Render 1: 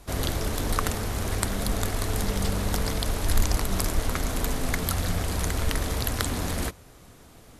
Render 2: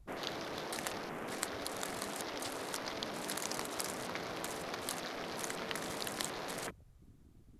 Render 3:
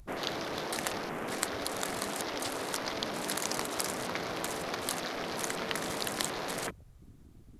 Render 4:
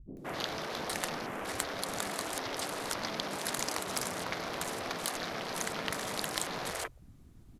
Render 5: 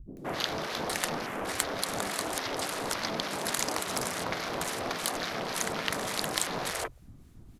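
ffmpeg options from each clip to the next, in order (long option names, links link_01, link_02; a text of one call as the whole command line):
ffmpeg -i in.wav -af "afftfilt=real='re*lt(hypot(re,im),0.126)':imag='im*lt(hypot(re,im),0.126)':win_size=1024:overlap=0.75,afwtdn=0.00891,volume=-7dB" out.wav
ffmpeg -i in.wav -af "acompressor=mode=upward:threshold=-58dB:ratio=2.5,volume=5.5dB" out.wav
ffmpeg -i in.wav -filter_complex "[0:a]asplit=2[link_01][link_02];[link_02]aeval=exprs='0.473*sin(PI/2*2.24*val(0)/0.473)':channel_layout=same,volume=-12dB[link_03];[link_01][link_03]amix=inputs=2:normalize=0,acrossover=split=350[link_04][link_05];[link_05]adelay=170[link_06];[link_04][link_06]amix=inputs=2:normalize=0,volume=-6dB" out.wav
ffmpeg -i in.wav -filter_complex "[0:a]acrossover=split=1200[link_01][link_02];[link_01]aeval=exprs='val(0)*(1-0.5/2+0.5/2*cos(2*PI*3.5*n/s))':channel_layout=same[link_03];[link_02]aeval=exprs='val(0)*(1-0.5/2-0.5/2*cos(2*PI*3.5*n/s))':channel_layout=same[link_04];[link_03][link_04]amix=inputs=2:normalize=0,volume=6dB" out.wav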